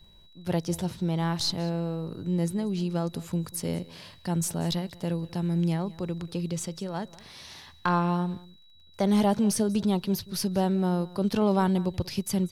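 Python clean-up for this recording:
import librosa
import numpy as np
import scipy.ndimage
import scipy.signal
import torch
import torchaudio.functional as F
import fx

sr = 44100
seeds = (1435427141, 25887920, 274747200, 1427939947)

y = fx.fix_declick_ar(x, sr, threshold=6.5)
y = fx.notch(y, sr, hz=3900.0, q=30.0)
y = fx.fix_echo_inverse(y, sr, delay_ms=189, level_db=-20.5)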